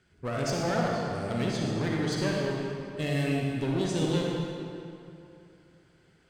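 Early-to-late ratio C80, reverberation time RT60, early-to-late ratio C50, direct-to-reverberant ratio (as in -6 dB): 0.0 dB, 2.7 s, -2.0 dB, -2.0 dB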